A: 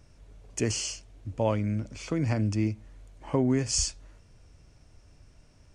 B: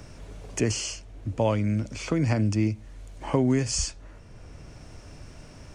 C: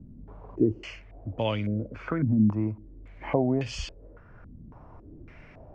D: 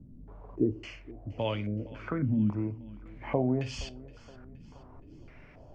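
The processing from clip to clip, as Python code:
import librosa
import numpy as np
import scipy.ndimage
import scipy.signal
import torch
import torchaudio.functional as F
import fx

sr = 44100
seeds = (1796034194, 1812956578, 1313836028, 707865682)

y1 = fx.band_squash(x, sr, depth_pct=40)
y1 = y1 * 10.0 ** (3.5 / 20.0)
y2 = fx.filter_held_lowpass(y1, sr, hz=3.6, low_hz=230.0, high_hz=3100.0)
y2 = y2 * 10.0 ** (-4.5 / 20.0)
y3 = fx.echo_feedback(y2, sr, ms=470, feedback_pct=51, wet_db=-20.5)
y3 = fx.room_shoebox(y3, sr, seeds[0], volume_m3=150.0, walls='furnished', distance_m=0.31)
y3 = y3 * 10.0 ** (-4.0 / 20.0)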